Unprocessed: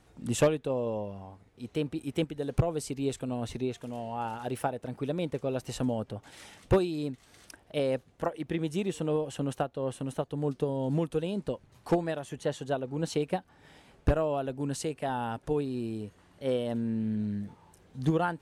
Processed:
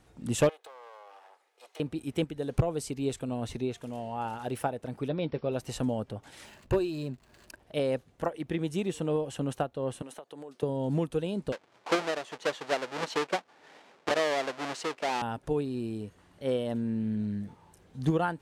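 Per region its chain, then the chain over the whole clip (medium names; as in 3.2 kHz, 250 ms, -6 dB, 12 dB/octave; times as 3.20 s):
0.49–1.80 s: comb filter that takes the minimum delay 2.4 ms + high-pass 560 Hz 24 dB/octave + compression 8:1, threshold -45 dBFS
5.08–5.52 s: brick-wall FIR low-pass 5.7 kHz + doubling 13 ms -11.5 dB
6.45–7.60 s: rippled EQ curve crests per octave 1.4, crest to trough 8 dB + compression 1.5:1, threshold -31 dBFS + hysteresis with a dead band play -52 dBFS
10.02–10.63 s: high-pass 440 Hz + compression 12:1, threshold -39 dBFS
11.52–15.22 s: square wave that keeps the level + band-pass 450–6600 Hz + treble shelf 4.4 kHz -5 dB
whole clip: none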